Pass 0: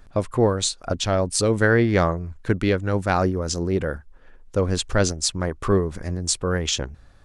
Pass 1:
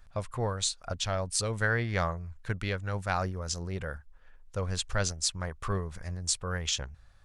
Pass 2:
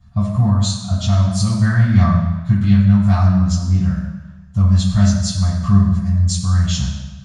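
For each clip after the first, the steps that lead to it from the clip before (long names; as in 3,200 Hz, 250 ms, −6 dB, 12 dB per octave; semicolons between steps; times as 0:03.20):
parametric band 310 Hz −14 dB 1.4 octaves; level −6 dB
convolution reverb RT60 1.1 s, pre-delay 3 ms, DRR −11.5 dB; level −12 dB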